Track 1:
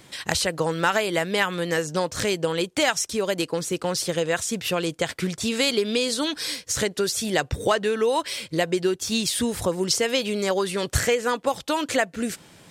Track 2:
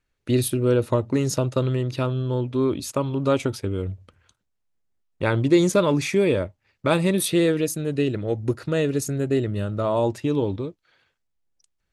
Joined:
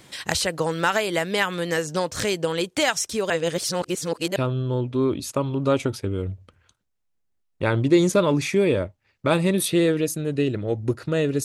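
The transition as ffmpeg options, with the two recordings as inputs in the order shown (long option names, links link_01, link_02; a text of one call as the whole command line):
ffmpeg -i cue0.wav -i cue1.wav -filter_complex "[0:a]apad=whole_dur=11.44,atrim=end=11.44,asplit=2[link_01][link_02];[link_01]atrim=end=3.302[link_03];[link_02]atrim=start=3.298:end=4.362,asetpts=PTS-STARTPTS,areverse[link_04];[1:a]atrim=start=1.958:end=9.04[link_05];[link_03][link_04]acrossfade=duration=0.004:curve1=hsin:curve2=hsin[link_06];[link_06][link_05]acrossfade=duration=0.004:curve1=hsin:curve2=hsin" out.wav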